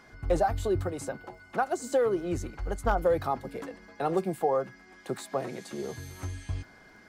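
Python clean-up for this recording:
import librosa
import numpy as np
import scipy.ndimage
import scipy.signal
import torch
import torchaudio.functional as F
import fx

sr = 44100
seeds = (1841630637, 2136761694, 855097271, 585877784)

y = fx.fix_declip(x, sr, threshold_db=-15.0)
y = fx.fix_declick_ar(y, sr, threshold=6.5)
y = fx.notch(y, sr, hz=2100.0, q=30.0)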